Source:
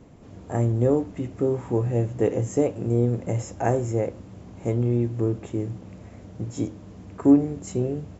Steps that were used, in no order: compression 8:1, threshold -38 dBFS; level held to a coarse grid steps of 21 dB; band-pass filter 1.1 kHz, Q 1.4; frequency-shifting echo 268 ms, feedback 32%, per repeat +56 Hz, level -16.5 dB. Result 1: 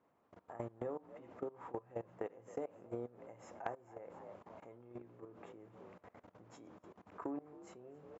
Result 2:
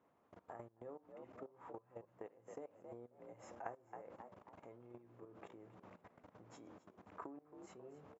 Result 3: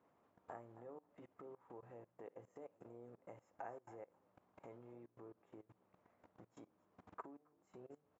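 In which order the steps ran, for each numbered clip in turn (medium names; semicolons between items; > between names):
frequency-shifting echo > level held to a coarse grid > band-pass filter > compression; level held to a coarse grid > frequency-shifting echo > compression > band-pass filter; compression > frequency-shifting echo > level held to a coarse grid > band-pass filter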